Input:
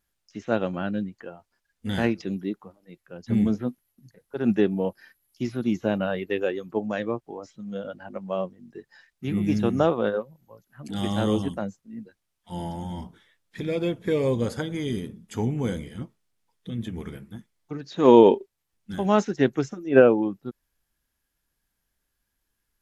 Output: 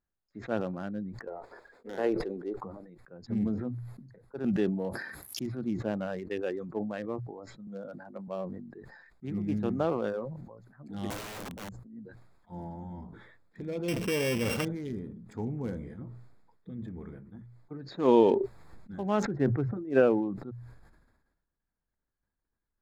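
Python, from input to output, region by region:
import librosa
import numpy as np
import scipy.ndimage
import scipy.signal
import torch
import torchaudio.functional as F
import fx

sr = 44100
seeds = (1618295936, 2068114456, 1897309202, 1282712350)

y = fx.chain(x, sr, fx.dynamic_eq(hz=2800.0, q=0.79, threshold_db=-41.0, ratio=4.0, max_db=-4),
    fx.highpass_res(hz=440.0, q=3.1),
    fx.running_max(window=3), at=(1.27, 2.6))
y = fx.chain(y, sr, fx.highpass(hz=61.0, slope=12),
    fx.high_shelf(hz=5400.0, db=8.0),
    fx.pre_swell(db_per_s=80.0), at=(4.44, 5.46))
y = fx.chain(y, sr, fx.highpass(hz=120.0, slope=24),
    fx.high_shelf(hz=4500.0, db=10.5), at=(7.67, 8.28))
y = fx.chain(y, sr, fx.peak_eq(hz=3100.0, db=-9.5, octaves=2.6),
    fx.overflow_wrap(gain_db=27.0), at=(11.1, 11.96))
y = fx.chain(y, sr, fx.sample_sort(block=16),
    fx.dynamic_eq(hz=1400.0, q=0.7, threshold_db=-38.0, ratio=4.0, max_db=4),
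    fx.env_flatten(amount_pct=70), at=(13.88, 14.65))
y = fx.chain(y, sr, fx.lowpass(hz=1800.0, slope=12),
    fx.peak_eq(hz=77.0, db=13.5, octaves=1.3), at=(19.25, 19.77))
y = fx.wiener(y, sr, points=15)
y = fx.hum_notches(y, sr, base_hz=60, count=2)
y = fx.sustainer(y, sr, db_per_s=47.0)
y = y * 10.0 ** (-8.0 / 20.0)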